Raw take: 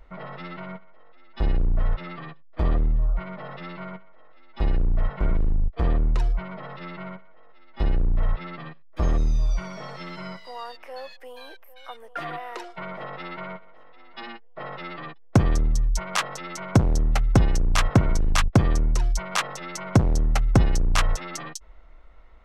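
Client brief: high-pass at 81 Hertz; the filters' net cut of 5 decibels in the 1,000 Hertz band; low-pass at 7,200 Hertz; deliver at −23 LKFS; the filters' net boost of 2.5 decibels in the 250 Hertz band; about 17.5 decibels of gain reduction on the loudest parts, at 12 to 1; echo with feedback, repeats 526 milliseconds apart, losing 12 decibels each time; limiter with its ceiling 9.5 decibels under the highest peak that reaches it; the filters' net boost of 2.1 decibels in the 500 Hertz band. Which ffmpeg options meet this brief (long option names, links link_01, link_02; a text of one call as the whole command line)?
ffmpeg -i in.wav -af "highpass=81,lowpass=7200,equalizer=frequency=250:width_type=o:gain=3,equalizer=frequency=500:width_type=o:gain=4,equalizer=frequency=1000:width_type=o:gain=-8.5,acompressor=threshold=-29dB:ratio=12,alimiter=limit=-24dB:level=0:latency=1,aecho=1:1:526|1052|1578:0.251|0.0628|0.0157,volume=15dB" out.wav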